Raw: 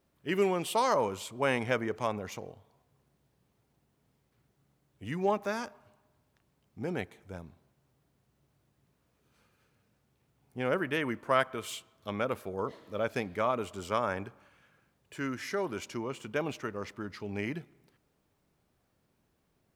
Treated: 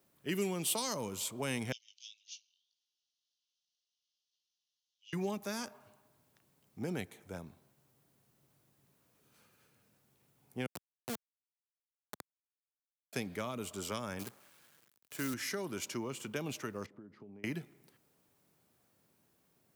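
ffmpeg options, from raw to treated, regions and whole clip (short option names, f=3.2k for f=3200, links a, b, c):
-filter_complex "[0:a]asettb=1/sr,asplit=3[a][b][c];[a]atrim=end=1.724[d];[b]atrim=start=1.72:end=5.13,asetpts=PTS-STARTPTS,afade=t=in:d=0.004:c=qsin,afade=t=out:st=3.406:d=0.004:c=qsin,asuperpass=centerf=4300:order=12:qfactor=1.2,flanger=delay=17:depth=4.5:speed=1.8[e];[c]atrim=start=5.126[f];[d][e]acrossfade=d=0.004:c1=hsin:c2=qsin[g];[g][f]acrossfade=d=0.004:c1=qsin:c2=hsin,asettb=1/sr,asplit=3[h][i][j];[h]atrim=end=10.664[k];[i]atrim=start=10.66:end=13.13,asetpts=PTS-STARTPTS,afade=t=in:d=0.004:c=qsin,afade=t=out:st=2.466:d=0.004:c=qsin,asuperpass=centerf=190:order=12:qfactor=1.6,acrusher=bits=3:dc=4:mix=0:aa=0.000001[l];[j]atrim=start=13.126[m];[k][l]acrossfade=d=0.004:c1=hsin:c2=qsin[n];[n][m]acrossfade=d=0.004:c1=qsin:c2=hsin,asettb=1/sr,asplit=3[o][p][q];[o]atrim=end=14.194[r];[p]atrim=start=14.19:end=15.34,asetpts=PTS-STARTPTS,afade=t=in:d=0.004:c=qsin,afade=t=out:st=1.146:d=0.004:c=qsin,highpass=89,acrusher=bits=8:dc=4:mix=0:aa=0.000001[s];[q]atrim=start=15.336[t];[r][s]acrossfade=d=0.004:c1=hsin:c2=qsin[u];[u][t]acrossfade=d=0.004:c1=qsin:c2=hsin,asettb=1/sr,asplit=3[v][w][x];[v]atrim=end=16.864[y];[w]atrim=start=16.86:end=17.44,asetpts=PTS-STARTPTS,afade=t=in:d=0.004:c=qsin,afade=t=out:st=0.576:d=0.004:c=qsin,acompressor=threshold=-45dB:ratio=16:attack=3.2:release=140:knee=1:detection=peak,bandpass=f=230:t=q:w=0.67[z];[x]atrim=start=17.436[aa];[y][z]acrossfade=d=0.004:c1=hsin:c2=qsin[ab];[ab][aa]acrossfade=d=0.004:c1=qsin:c2=hsin,highpass=110,highshelf=f=6.9k:g=11,acrossover=split=270|3000[ac][ad][ae];[ad]acompressor=threshold=-40dB:ratio=6[af];[ac][af][ae]amix=inputs=3:normalize=0"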